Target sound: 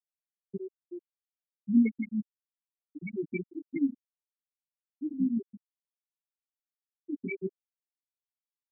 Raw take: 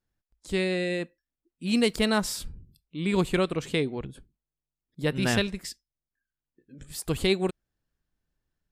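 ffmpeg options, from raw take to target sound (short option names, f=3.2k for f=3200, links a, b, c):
-filter_complex "[0:a]acontrast=65,asplit=3[a][b][c];[a]bandpass=f=270:t=q:w=8,volume=0dB[d];[b]bandpass=f=2.29k:t=q:w=8,volume=-6dB[e];[c]bandpass=f=3.01k:t=q:w=8,volume=-9dB[f];[d][e][f]amix=inputs=3:normalize=0,flanger=delay=17.5:depth=5.1:speed=1.3,afftfilt=real='re*gte(hypot(re,im),0.112)':imag='im*gte(hypot(re,im),0.112)':win_size=1024:overlap=0.75,volume=5dB"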